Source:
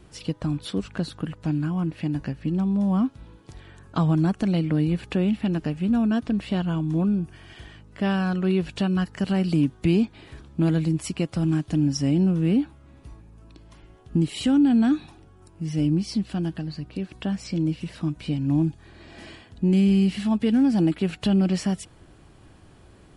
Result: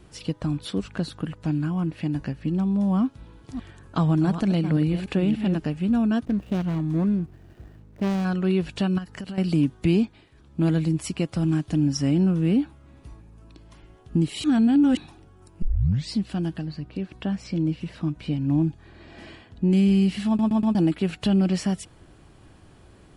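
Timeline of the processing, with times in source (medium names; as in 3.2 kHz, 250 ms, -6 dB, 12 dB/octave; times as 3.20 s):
3.01–5.56 s: chunks repeated in reverse 293 ms, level -9.5 dB
6.25–8.25 s: median filter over 41 samples
8.98–9.38 s: compression 8:1, threshold -30 dBFS
9.99–10.65 s: dip -14.5 dB, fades 0.31 s
11.93–12.35 s: peaking EQ 1.4 kHz +5 dB
14.44–14.97 s: reverse
15.62 s: tape start 0.52 s
16.65–19.71 s: low-pass 3.9 kHz 6 dB/octave
20.27 s: stutter in place 0.12 s, 4 plays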